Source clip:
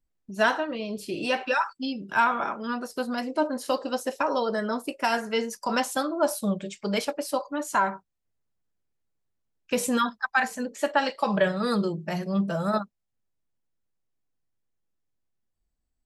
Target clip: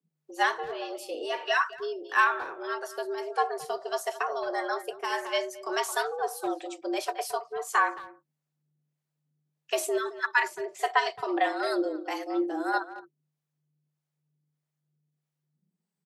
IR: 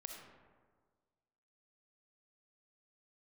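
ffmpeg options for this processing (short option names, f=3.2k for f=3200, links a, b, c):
-filter_complex "[0:a]afreqshift=150,asplit=2[a][b];[b]adelay=220,highpass=300,lowpass=3.4k,asoftclip=type=hard:threshold=-18dB,volume=-13dB[c];[a][c]amix=inputs=2:normalize=0,acrossover=split=490[d][e];[d]aeval=exprs='val(0)*(1-0.7/2+0.7/2*cos(2*PI*1.6*n/s))':c=same[f];[e]aeval=exprs='val(0)*(1-0.7/2-0.7/2*cos(2*PI*1.6*n/s))':c=same[g];[f][g]amix=inputs=2:normalize=0"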